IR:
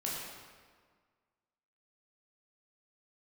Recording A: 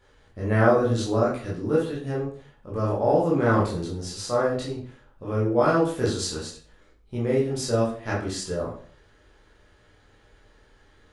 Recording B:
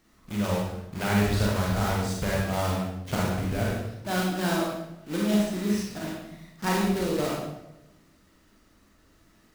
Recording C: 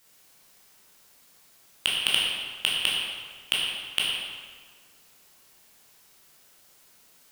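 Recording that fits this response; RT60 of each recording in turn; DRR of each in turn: C; 0.50, 0.90, 1.7 s; -7.0, -4.0, -5.5 dB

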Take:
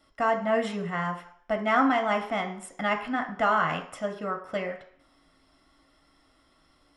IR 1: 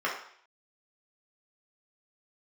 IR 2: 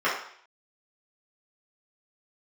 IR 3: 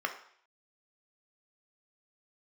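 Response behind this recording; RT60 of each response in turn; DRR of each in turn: 3; 0.60, 0.60, 0.60 s; -5.0, -10.0, 4.0 dB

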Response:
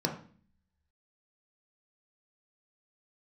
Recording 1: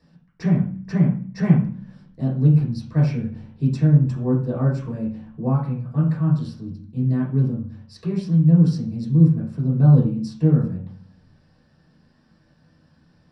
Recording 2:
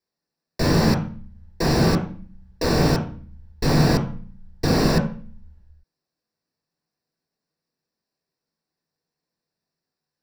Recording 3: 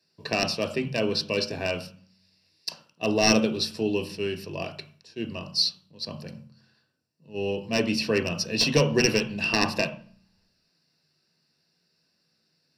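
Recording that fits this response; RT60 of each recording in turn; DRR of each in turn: 2; 0.45, 0.45, 0.45 s; -8.5, 0.5, 5.0 dB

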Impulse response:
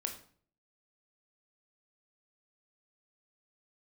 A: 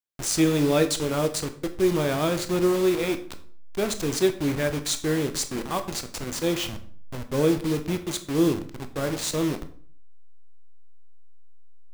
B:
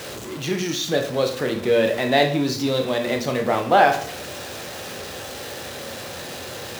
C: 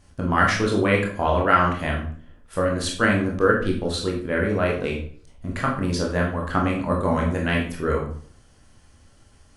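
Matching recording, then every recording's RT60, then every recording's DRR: B; 0.50, 0.50, 0.50 s; 8.0, 3.5, -1.5 dB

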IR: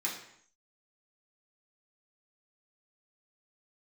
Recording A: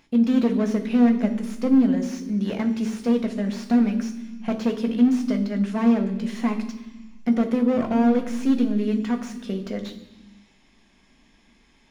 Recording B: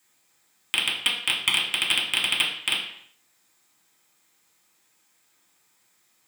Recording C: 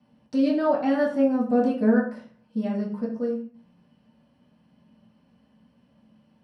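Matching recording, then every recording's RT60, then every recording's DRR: B; 1.2, 0.65, 0.45 s; 4.5, -5.5, -8.5 dB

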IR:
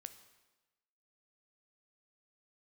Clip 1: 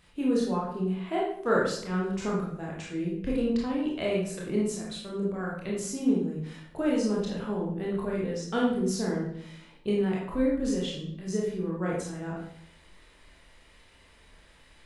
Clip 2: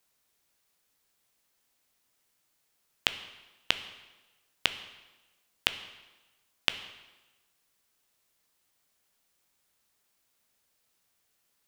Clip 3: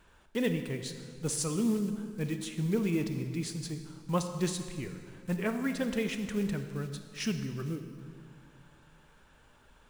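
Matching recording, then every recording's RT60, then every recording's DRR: 2; 0.65, 1.1, 2.0 s; -4.5, 10.0, 7.5 dB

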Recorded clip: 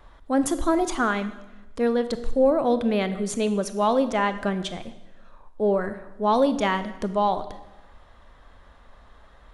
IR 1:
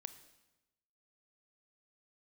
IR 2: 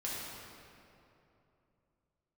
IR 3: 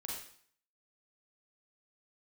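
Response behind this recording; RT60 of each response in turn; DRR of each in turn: 1; 1.0, 2.9, 0.55 s; 11.0, -7.0, -3.5 dB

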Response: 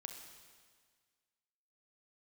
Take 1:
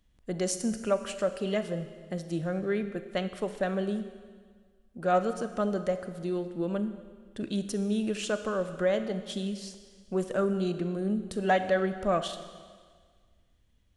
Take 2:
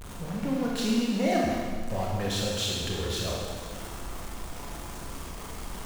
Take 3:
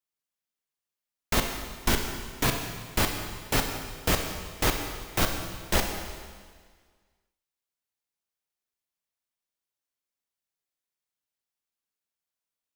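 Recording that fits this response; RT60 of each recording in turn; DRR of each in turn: 3; 1.7, 1.7, 1.7 s; 9.5, -3.5, 4.0 dB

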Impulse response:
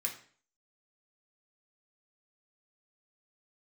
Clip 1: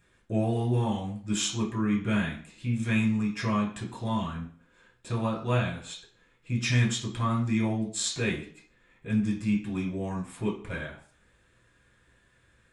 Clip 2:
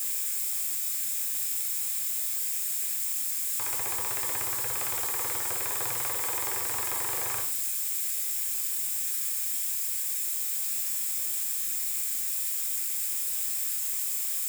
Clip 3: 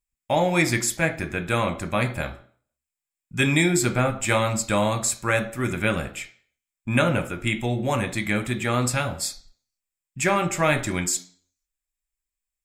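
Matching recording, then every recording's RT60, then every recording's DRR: 2; 0.45, 0.45, 0.45 s; -5.0, -0.5, 6.0 dB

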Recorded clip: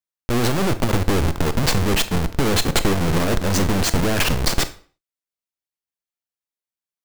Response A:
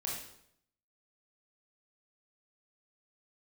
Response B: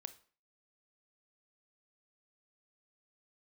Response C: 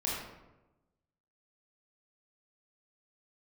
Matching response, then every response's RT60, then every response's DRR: B; 0.70, 0.45, 1.0 s; -4.0, 11.5, -5.5 dB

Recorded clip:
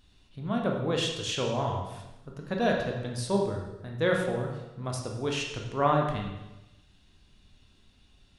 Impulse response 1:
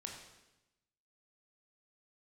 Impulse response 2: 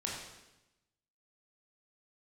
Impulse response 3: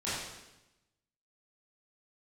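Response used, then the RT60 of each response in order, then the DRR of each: 1; 0.95, 0.95, 0.95 s; 0.0, -4.0, -12.5 dB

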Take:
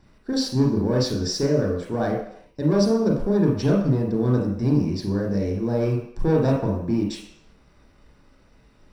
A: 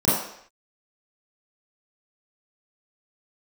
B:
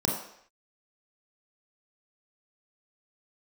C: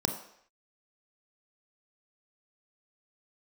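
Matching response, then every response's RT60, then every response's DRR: B; not exponential, not exponential, not exponential; -10.5, -1.0, 5.0 dB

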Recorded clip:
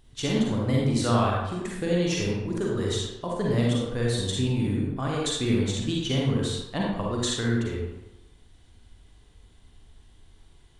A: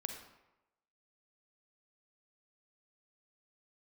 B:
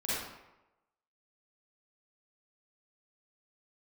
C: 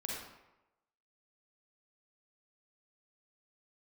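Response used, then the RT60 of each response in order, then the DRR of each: C; 0.95, 0.95, 0.95 s; 4.5, -10.0, -3.5 dB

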